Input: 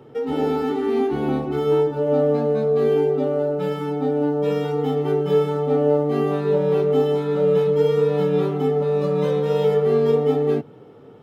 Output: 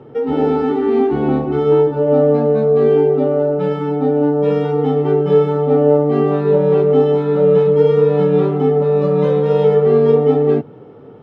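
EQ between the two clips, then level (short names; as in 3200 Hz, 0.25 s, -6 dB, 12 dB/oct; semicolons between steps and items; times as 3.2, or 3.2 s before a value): air absorption 76 m; high shelf 2700 Hz -9 dB; +6.5 dB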